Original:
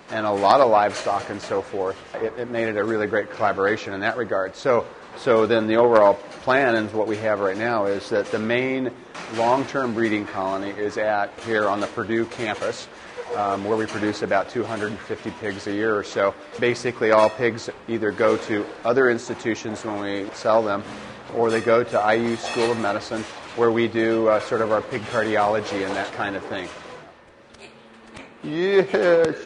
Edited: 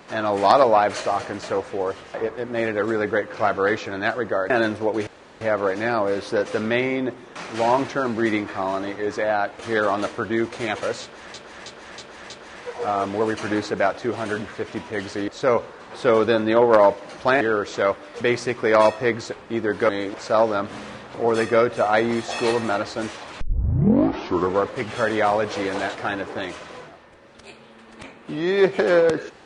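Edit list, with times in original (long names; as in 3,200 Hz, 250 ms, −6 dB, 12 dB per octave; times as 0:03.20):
0:04.50–0:06.63: move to 0:15.79
0:07.20: splice in room tone 0.34 s
0:12.81–0:13.13: repeat, 5 plays
0:18.27–0:20.04: remove
0:23.56: tape start 1.27 s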